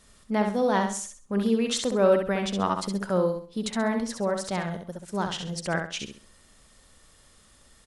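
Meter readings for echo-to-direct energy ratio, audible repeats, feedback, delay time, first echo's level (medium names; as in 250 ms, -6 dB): -5.0 dB, 3, 31%, 66 ms, -5.5 dB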